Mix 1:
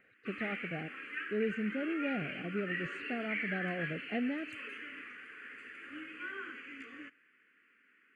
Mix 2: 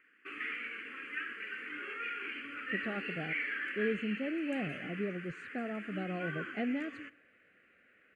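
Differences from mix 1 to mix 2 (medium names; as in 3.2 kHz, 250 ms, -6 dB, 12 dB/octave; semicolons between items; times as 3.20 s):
speech: entry +2.45 s; background: send +11.0 dB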